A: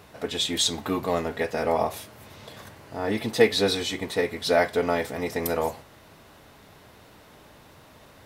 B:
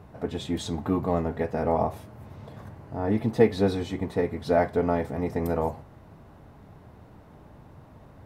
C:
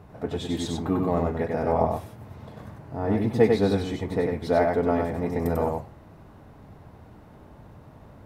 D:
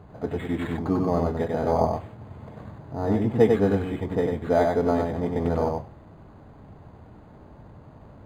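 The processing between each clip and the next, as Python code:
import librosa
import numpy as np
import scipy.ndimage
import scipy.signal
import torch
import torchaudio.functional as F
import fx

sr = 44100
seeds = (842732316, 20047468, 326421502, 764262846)

y1 = fx.curve_eq(x, sr, hz=(140.0, 520.0, 800.0, 3500.0), db=(0, -9, -7, -22))
y1 = y1 * 10.0 ** (7.0 / 20.0)
y2 = y1 + 10.0 ** (-3.5 / 20.0) * np.pad(y1, (int(96 * sr / 1000.0), 0))[:len(y1)]
y3 = np.interp(np.arange(len(y2)), np.arange(len(y2))[::8], y2[::8])
y3 = y3 * 10.0 ** (1.0 / 20.0)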